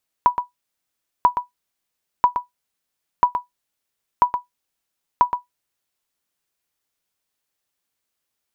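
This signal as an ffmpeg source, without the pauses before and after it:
ffmpeg -f lavfi -i "aevalsrc='0.596*(sin(2*PI*981*mod(t,0.99))*exp(-6.91*mod(t,0.99)/0.14)+0.376*sin(2*PI*981*max(mod(t,0.99)-0.12,0))*exp(-6.91*max(mod(t,0.99)-0.12,0)/0.14))':duration=5.94:sample_rate=44100" out.wav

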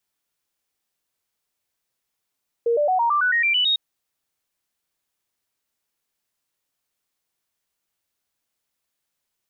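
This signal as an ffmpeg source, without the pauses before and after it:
ffmpeg -f lavfi -i "aevalsrc='0.15*clip(min(mod(t,0.11),0.11-mod(t,0.11))/0.005,0,1)*sin(2*PI*468*pow(2,floor(t/0.11)/3)*mod(t,0.11))':duration=1.1:sample_rate=44100" out.wav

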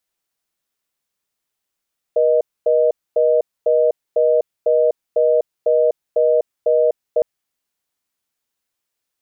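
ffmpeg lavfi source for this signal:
ffmpeg -f lavfi -i "aevalsrc='0.188*(sin(2*PI*480*t)+sin(2*PI*620*t))*clip(min(mod(t,0.5),0.25-mod(t,0.5))/0.005,0,1)':duration=5.06:sample_rate=44100" out.wav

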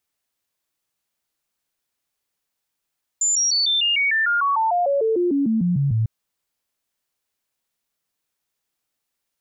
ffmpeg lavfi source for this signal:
ffmpeg -f lavfi -i "aevalsrc='0.15*clip(min(mod(t,0.15),0.15-mod(t,0.15))/0.005,0,1)*sin(2*PI*7120*pow(2,-floor(t/0.15)/3)*mod(t,0.15))':duration=2.85:sample_rate=44100" out.wav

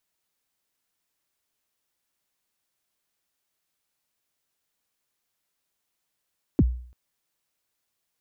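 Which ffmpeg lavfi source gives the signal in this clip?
ffmpeg -f lavfi -i "aevalsrc='0.251*pow(10,-3*t/0.52)*sin(2*PI*(370*0.041/log(61/370)*(exp(log(61/370)*min(t,0.041)/0.041)-1)+61*max(t-0.041,0)))':duration=0.34:sample_rate=44100" out.wav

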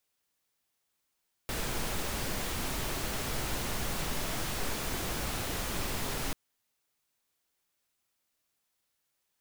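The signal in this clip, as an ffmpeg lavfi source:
ffmpeg -f lavfi -i "anoisesrc=color=pink:amplitude=0.108:duration=4.84:sample_rate=44100:seed=1" out.wav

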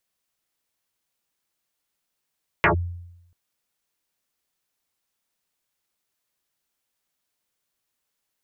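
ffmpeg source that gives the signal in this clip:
ffmpeg -f lavfi -i "aevalsrc='0.251*pow(10,-3*t/0.88)*sin(2*PI*87.1*t+10*clip(1-t/0.11,0,1)*sin(2*PI*2.94*87.1*t))':duration=0.69:sample_rate=44100" out.wav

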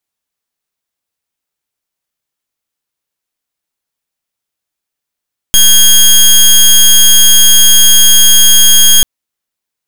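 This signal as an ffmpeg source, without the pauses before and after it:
ffmpeg -f lavfi -i "aevalsrc='0.631*(2*lt(mod(3260*t,1),0.17)-1)':duration=3.49:sample_rate=44100" out.wav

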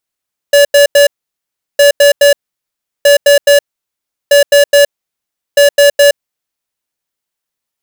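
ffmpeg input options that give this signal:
ffmpeg -f lavfi -i "aevalsrc='0.562*(2*lt(mod(572*t,1),0.5)-1)*clip(min(mod(mod(t,1.26),0.21),0.12-mod(mod(t,1.26),0.21))/0.005,0,1)*lt(mod(t,1.26),0.63)':duration=6.3:sample_rate=44100" out.wav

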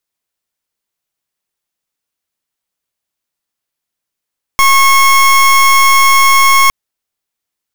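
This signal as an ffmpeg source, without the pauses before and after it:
ffmpeg -f lavfi -i "aevalsrc='0.447*(2*lt(mod(1090*t,1),0.27)-1)':duration=2.11:sample_rate=44100" out.wav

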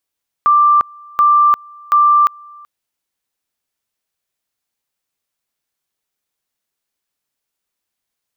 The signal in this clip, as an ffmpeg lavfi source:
ffmpeg -f lavfi -i "aevalsrc='pow(10,(-7-28*gte(mod(t,0.73),0.35))/20)*sin(2*PI*1180*t)':duration=2.19:sample_rate=44100" out.wav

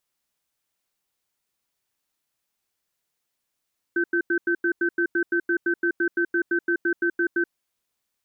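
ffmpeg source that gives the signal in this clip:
ffmpeg -f lavfi -i "aevalsrc='0.0794*(sin(2*PI*344*t)+sin(2*PI*1540*t))*clip(min(mod(t,0.17),0.08-mod(t,0.17))/0.005,0,1)':duration=3.48:sample_rate=44100" out.wav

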